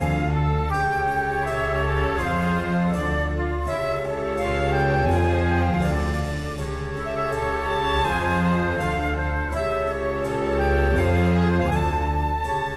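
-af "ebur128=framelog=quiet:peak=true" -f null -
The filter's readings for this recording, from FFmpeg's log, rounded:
Integrated loudness:
  I:         -23.0 LUFS
  Threshold: -33.0 LUFS
Loudness range:
  LRA:         1.6 LU
  Threshold: -43.1 LUFS
  LRA low:   -23.8 LUFS
  LRA high:  -22.3 LUFS
True peak:
  Peak:      -10.3 dBFS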